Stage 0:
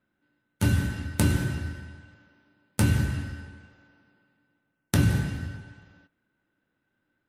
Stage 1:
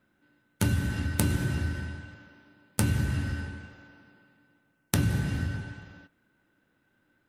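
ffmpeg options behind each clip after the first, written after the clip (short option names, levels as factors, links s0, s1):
-af "acompressor=threshold=0.0251:ratio=3,volume=2.11"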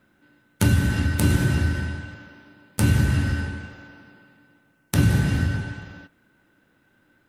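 -af "alimiter=level_in=2.82:limit=0.891:release=50:level=0:latency=1,volume=0.891"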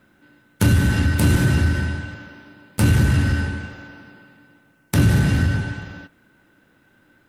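-af "asoftclip=type=tanh:threshold=0.224,volume=1.78"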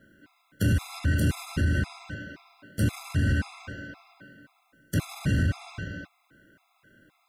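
-af "alimiter=limit=0.15:level=0:latency=1:release=100,asuperstop=centerf=890:order=4:qfactor=6.9,afftfilt=real='re*gt(sin(2*PI*1.9*pts/sr)*(1-2*mod(floor(b*sr/1024/680),2)),0)':imag='im*gt(sin(2*PI*1.9*pts/sr)*(1-2*mod(floor(b*sr/1024/680),2)),0)':win_size=1024:overlap=0.75"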